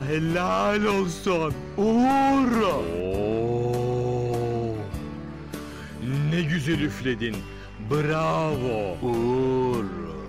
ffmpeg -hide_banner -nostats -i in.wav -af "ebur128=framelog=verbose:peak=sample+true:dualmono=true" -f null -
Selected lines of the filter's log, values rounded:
Integrated loudness:
  I:         -21.8 LUFS
  Threshold: -32.2 LUFS
Loudness range:
  LRA:         5.0 LU
  Threshold: -42.6 LUFS
  LRA low:   -25.1 LUFS
  LRA high:  -20.1 LUFS
Sample peak:
  Peak:      -15.4 dBFS
True peak:
  Peak:      -15.3 dBFS